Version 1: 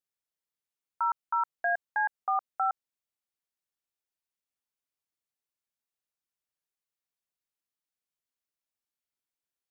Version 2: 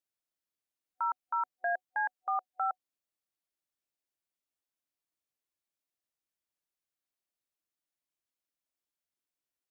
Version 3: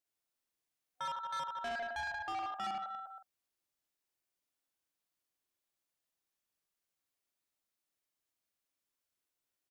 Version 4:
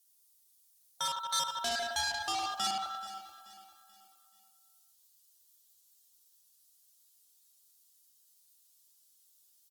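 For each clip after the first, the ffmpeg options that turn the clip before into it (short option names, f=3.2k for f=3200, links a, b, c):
-af "superequalizer=6b=1.78:8b=1.41,alimiter=limit=-22dB:level=0:latency=1:release=16,volume=-2dB"
-filter_complex "[0:a]asplit=2[a][b];[b]adelay=45,volume=-8dB[c];[a][c]amix=inputs=2:normalize=0,asplit=2[d][e];[e]aecho=0:1:70|150.5|243.1|349.5|472:0.631|0.398|0.251|0.158|0.1[f];[d][f]amix=inputs=2:normalize=0,asoftclip=type=tanh:threshold=-36dB"
-af "aexciter=amount=7.4:drive=4.4:freq=3.3k,aecho=1:1:432|864|1296|1728:0.168|0.0688|0.0282|0.0116,volume=3dB" -ar 48000 -c:a libopus -b:a 24k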